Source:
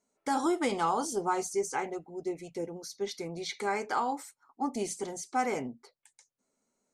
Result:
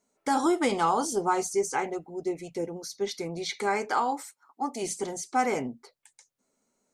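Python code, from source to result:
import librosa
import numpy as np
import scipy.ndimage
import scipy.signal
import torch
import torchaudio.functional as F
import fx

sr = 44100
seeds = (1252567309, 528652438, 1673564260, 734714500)

y = fx.highpass(x, sr, hz=fx.line((3.88, 150.0), (4.82, 570.0)), slope=6, at=(3.88, 4.82), fade=0.02)
y = y * librosa.db_to_amplitude(4.0)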